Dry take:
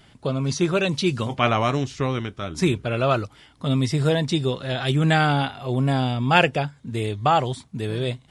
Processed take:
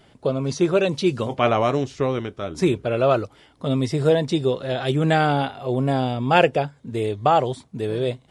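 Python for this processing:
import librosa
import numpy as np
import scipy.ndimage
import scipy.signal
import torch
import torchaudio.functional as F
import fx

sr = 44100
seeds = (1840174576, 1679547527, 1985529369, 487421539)

y = fx.peak_eq(x, sr, hz=490.0, db=9.0, octaves=1.6)
y = y * librosa.db_to_amplitude(-3.5)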